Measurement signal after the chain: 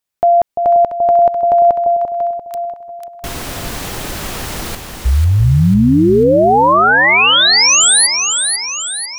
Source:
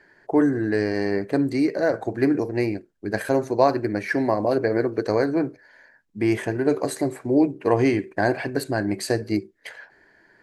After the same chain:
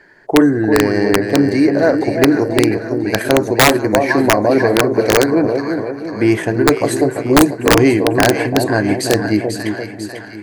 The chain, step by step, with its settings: two-band feedback delay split 920 Hz, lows 343 ms, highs 495 ms, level -6 dB; integer overflow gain 9 dB; trim +8 dB

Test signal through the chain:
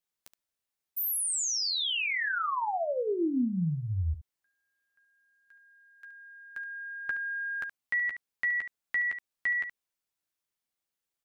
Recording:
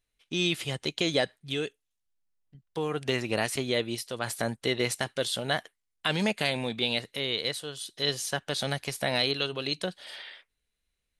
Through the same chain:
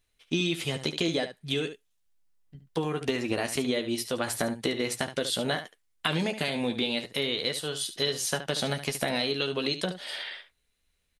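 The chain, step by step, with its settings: dynamic bell 270 Hz, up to +4 dB, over -40 dBFS, Q 0.99; compression, threshold -31 dBFS; early reflections 12 ms -7.5 dB, 72 ms -11 dB; trim +5.5 dB

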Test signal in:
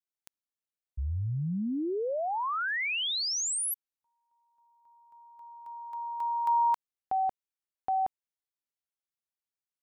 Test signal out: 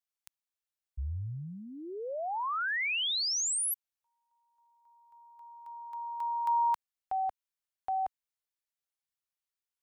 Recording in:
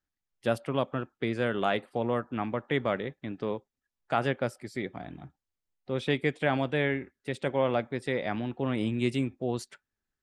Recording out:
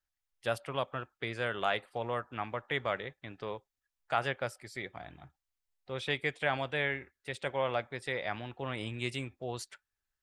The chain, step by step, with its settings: peaking EQ 240 Hz -14 dB 1.9 oct

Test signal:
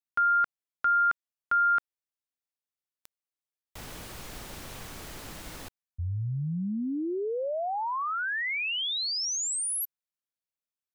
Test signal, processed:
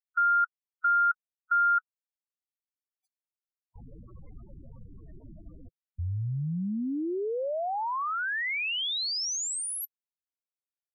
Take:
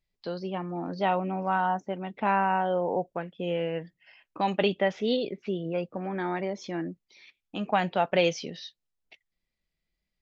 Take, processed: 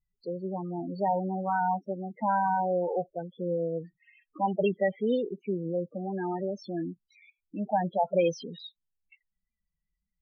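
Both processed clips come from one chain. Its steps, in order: loudest bins only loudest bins 8

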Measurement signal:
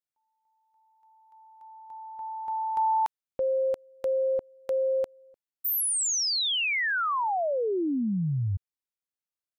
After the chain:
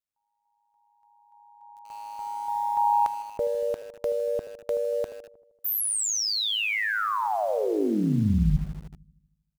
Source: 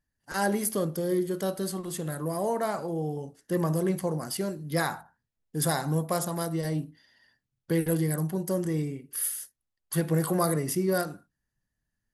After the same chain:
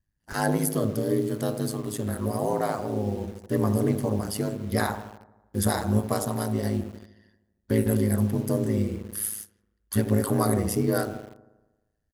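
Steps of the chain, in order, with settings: bass shelf 160 Hz +8.5 dB; on a send: feedback echo behind a low-pass 78 ms, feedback 62%, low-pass 950 Hz, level -9.5 dB; on the sum: ring modulator 53 Hz; speakerphone echo 160 ms, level -20 dB; in parallel at -8 dB: bit crusher 7-bit

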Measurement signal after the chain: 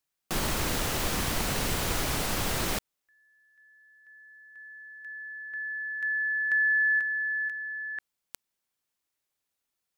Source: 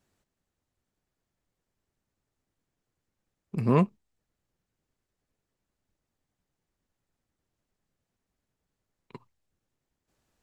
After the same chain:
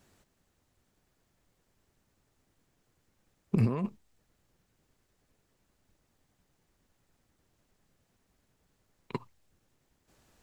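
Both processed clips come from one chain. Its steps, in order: compressor with a negative ratio -31 dBFS, ratio -1; trim +3 dB

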